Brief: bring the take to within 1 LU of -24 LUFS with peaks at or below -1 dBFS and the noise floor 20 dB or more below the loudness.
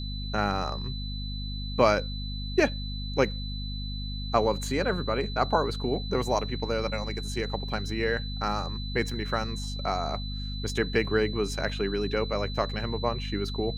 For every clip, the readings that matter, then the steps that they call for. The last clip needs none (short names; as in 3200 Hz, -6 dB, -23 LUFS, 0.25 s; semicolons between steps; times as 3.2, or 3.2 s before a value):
hum 50 Hz; harmonics up to 250 Hz; hum level -32 dBFS; steady tone 4000 Hz; tone level -39 dBFS; loudness -29.0 LUFS; peak -7.5 dBFS; loudness target -24.0 LUFS
-> de-hum 50 Hz, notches 5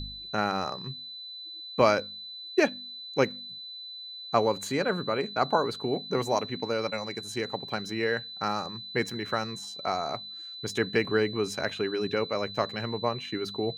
hum none; steady tone 4000 Hz; tone level -39 dBFS
-> notch 4000 Hz, Q 30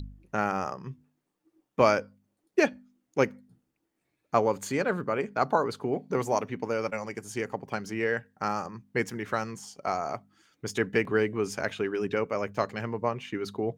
steady tone none; loudness -30.0 LUFS; peak -8.0 dBFS; loudness target -24.0 LUFS
-> gain +6 dB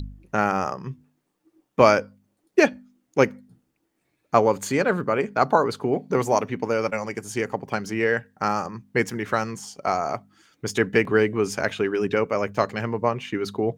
loudness -24.0 LUFS; peak -2.0 dBFS; noise floor -74 dBFS